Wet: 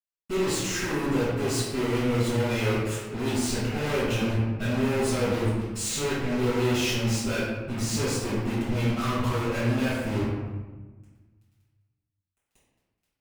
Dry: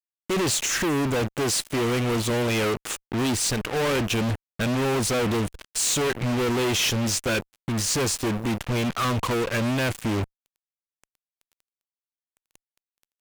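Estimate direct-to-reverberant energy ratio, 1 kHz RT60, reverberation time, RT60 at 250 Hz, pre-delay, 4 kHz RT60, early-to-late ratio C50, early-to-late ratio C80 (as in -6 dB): -11.0 dB, 1.2 s, 1.3 s, 1.7 s, 4 ms, 0.75 s, -1.0 dB, 2.0 dB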